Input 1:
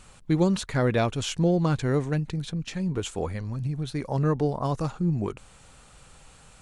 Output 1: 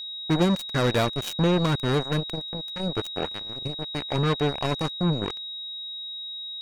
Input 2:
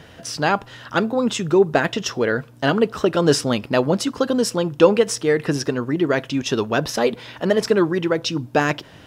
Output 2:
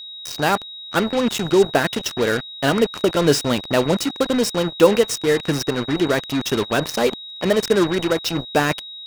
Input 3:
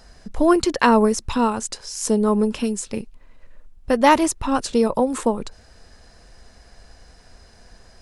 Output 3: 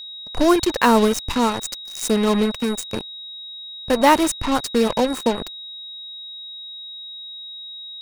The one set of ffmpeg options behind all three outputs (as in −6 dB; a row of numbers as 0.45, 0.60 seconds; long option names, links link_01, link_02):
-af "acrusher=bits=3:mix=0:aa=0.5,aeval=exprs='val(0)+0.0224*sin(2*PI*3800*n/s)':channel_layout=same"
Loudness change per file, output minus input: +0.5, +0.5, +0.5 LU